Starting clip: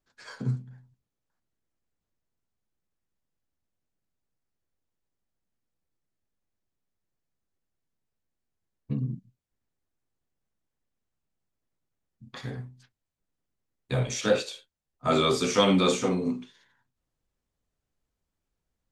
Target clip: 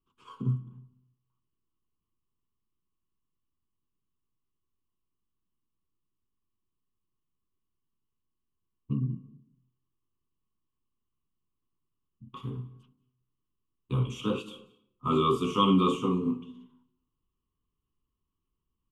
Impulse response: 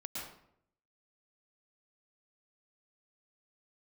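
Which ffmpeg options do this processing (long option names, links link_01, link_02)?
-filter_complex "[0:a]firequalizer=gain_entry='entry(390,0);entry(640,-24);entry(1100,8);entry(1700,-30);entry(2900,3);entry(4200,-23);entry(11000,-7)':delay=0.05:min_phase=1,asplit=2[link_01][link_02];[1:a]atrim=start_sample=2205,adelay=70[link_03];[link_02][link_03]afir=irnorm=-1:irlink=0,volume=-18.5dB[link_04];[link_01][link_04]amix=inputs=2:normalize=0"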